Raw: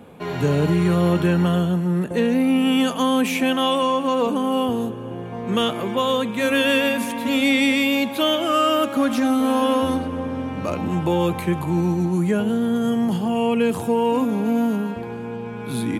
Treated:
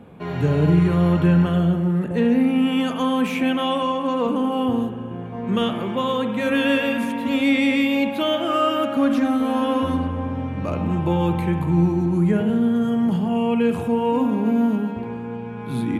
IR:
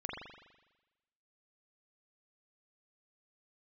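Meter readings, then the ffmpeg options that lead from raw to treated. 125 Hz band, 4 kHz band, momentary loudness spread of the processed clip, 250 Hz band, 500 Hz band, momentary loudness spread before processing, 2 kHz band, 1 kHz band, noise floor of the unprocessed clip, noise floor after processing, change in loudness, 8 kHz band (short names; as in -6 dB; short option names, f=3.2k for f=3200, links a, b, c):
+2.5 dB, -4.5 dB, 9 LU, +1.0 dB, -1.5 dB, 9 LU, -2.5 dB, -1.5 dB, -31 dBFS, -31 dBFS, 0.0 dB, n/a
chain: -filter_complex "[0:a]bass=f=250:g=5,treble=f=4k:g=-8,asplit=2[a][b];[1:a]atrim=start_sample=2205,asetrate=38808,aresample=44100[c];[b][c]afir=irnorm=-1:irlink=0,volume=-5dB[d];[a][d]amix=inputs=2:normalize=0,volume=-5.5dB"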